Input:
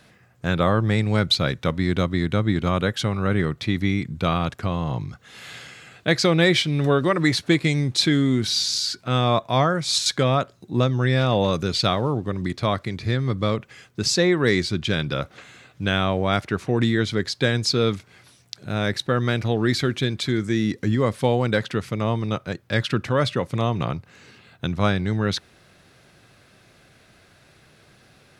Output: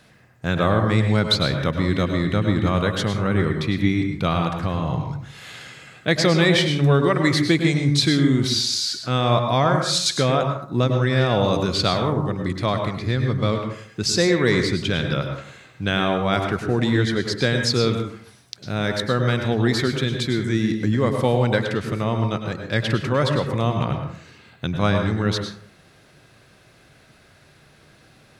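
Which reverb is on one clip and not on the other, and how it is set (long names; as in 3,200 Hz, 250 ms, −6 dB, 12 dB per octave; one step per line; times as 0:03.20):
dense smooth reverb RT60 0.54 s, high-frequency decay 0.5×, pre-delay 90 ms, DRR 4.5 dB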